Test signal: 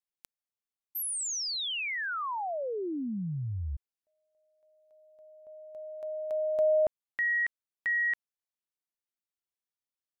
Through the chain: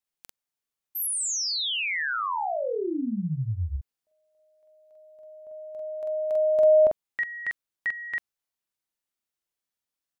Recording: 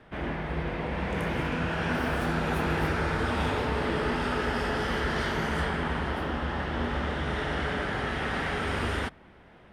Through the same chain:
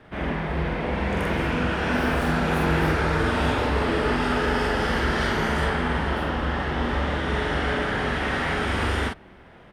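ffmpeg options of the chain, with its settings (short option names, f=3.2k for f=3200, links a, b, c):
-filter_complex "[0:a]asplit=2[a][b];[b]adelay=45,volume=-2dB[c];[a][c]amix=inputs=2:normalize=0,volume=3dB"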